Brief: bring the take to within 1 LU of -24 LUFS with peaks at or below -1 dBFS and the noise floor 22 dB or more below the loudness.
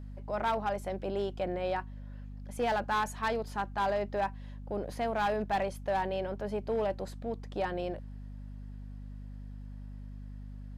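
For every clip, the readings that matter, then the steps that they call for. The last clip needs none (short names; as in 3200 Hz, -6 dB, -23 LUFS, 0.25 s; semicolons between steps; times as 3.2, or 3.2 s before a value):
clipped 1.2%; flat tops at -24.5 dBFS; hum 50 Hz; harmonics up to 250 Hz; hum level -41 dBFS; loudness -33.5 LUFS; peak -24.5 dBFS; loudness target -24.0 LUFS
-> clip repair -24.5 dBFS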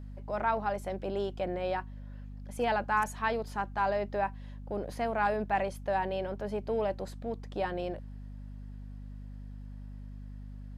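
clipped 0.0%; hum 50 Hz; harmonics up to 250 Hz; hum level -41 dBFS
-> de-hum 50 Hz, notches 5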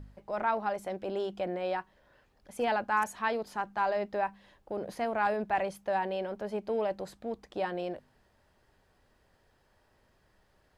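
hum none; loudness -33.0 LUFS; peak -15.5 dBFS; loudness target -24.0 LUFS
-> gain +9 dB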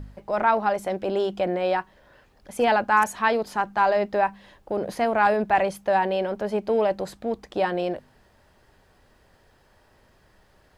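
loudness -24.0 LUFS; peak -6.5 dBFS; noise floor -60 dBFS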